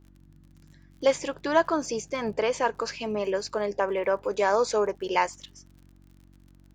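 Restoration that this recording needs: de-click; de-hum 46.7 Hz, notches 7

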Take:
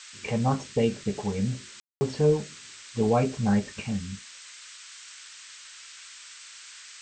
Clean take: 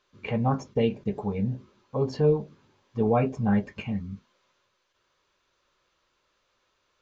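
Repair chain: room tone fill 1.80–2.01 s; noise print and reduce 26 dB

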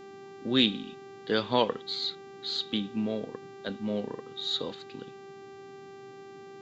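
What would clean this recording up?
de-hum 392.5 Hz, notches 19; noise print and reduce 29 dB

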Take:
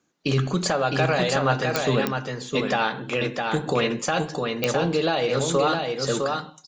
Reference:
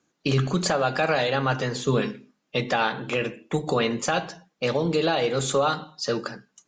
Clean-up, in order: de-click; inverse comb 659 ms -4 dB

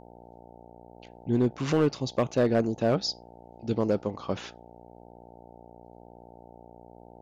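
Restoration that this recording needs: clip repair -16.5 dBFS; de-hum 59 Hz, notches 15

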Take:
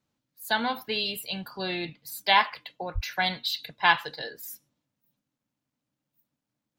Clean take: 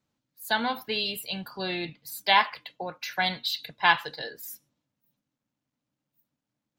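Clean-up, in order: de-plosive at 2.94 s

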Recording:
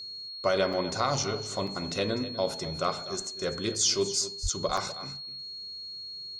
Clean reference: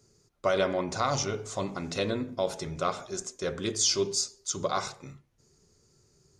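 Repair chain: band-stop 4.3 kHz, Q 30; de-plosive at 4.42 s; interpolate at 0.73/1.67/4.77 s, 4.3 ms; inverse comb 248 ms -14.5 dB

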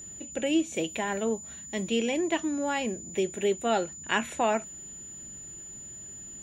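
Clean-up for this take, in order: band-stop 7 kHz, Q 30

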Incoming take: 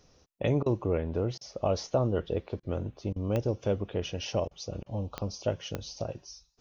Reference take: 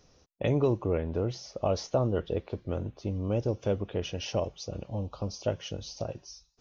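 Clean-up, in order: de-click; interpolate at 0.63/1.38/2.60/3.13/4.48/4.83 s, 30 ms

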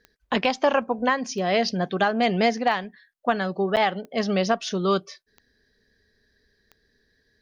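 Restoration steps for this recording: de-click; interpolate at 3.76 s, 8.3 ms

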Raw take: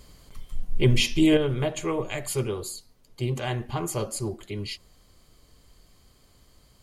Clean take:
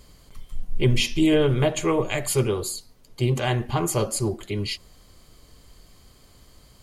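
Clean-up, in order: trim 0 dB, from 1.37 s +5.5 dB

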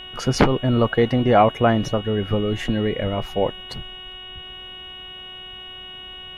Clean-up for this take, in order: de-hum 370.6 Hz, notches 10; band-stop 2.9 kHz, Q 30

